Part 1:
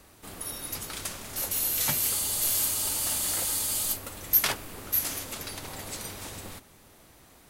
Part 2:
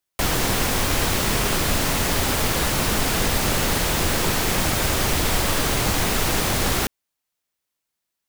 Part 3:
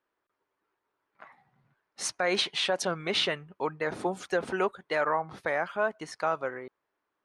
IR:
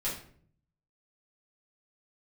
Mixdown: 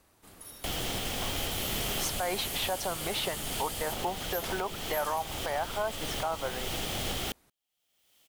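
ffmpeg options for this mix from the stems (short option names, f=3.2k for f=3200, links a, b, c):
-filter_complex "[0:a]asoftclip=type=tanh:threshold=-23.5dB,volume=-10.5dB[a];[1:a]equalizer=f=1k:t=o:w=0.33:g=-8,equalizer=f=1.6k:t=o:w=0.33:g=-4,equalizer=f=3.15k:t=o:w=0.33:g=10,acompressor=mode=upward:threshold=-30dB:ratio=2.5,adelay=450,volume=-11.5dB[b];[2:a]equalizer=f=850:w=1.5:g=7.5,volume=1.5dB[c];[b][c]amix=inputs=2:normalize=0,equalizer=f=760:w=1.7:g=4,alimiter=limit=-21.5dB:level=0:latency=1:release=398,volume=0dB[d];[a][d]amix=inputs=2:normalize=0"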